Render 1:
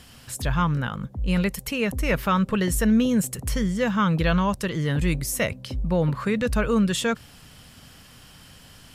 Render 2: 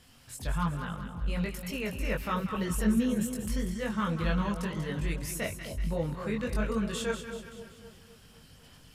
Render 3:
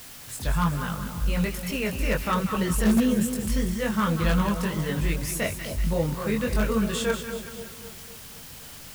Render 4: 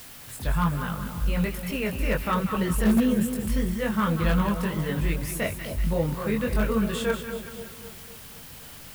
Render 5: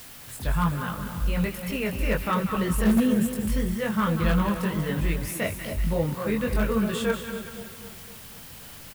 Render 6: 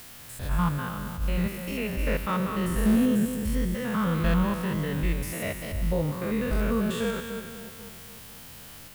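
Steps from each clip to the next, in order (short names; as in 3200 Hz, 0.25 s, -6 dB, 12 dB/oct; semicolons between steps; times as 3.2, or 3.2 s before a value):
chorus voices 4, 1.3 Hz, delay 21 ms, depth 3 ms; on a send: split-band echo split 870 Hz, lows 0.257 s, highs 0.19 s, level -8.5 dB; on the sum: gain -6.5 dB
in parallel at -11 dB: wrapped overs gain 19.5 dB; on the sum: requantised 8-bit, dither triangular; gain +4 dB
dynamic EQ 6200 Hz, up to -7 dB, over -50 dBFS, Q 0.96
echo 0.267 s -13.5 dB
stepped spectrum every 0.1 s; attack slew limiter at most 160 dB/s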